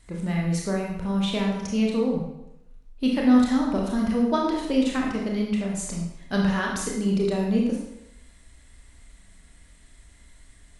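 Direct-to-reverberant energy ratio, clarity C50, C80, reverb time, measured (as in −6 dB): −1.5 dB, 2.0 dB, 5.0 dB, 0.85 s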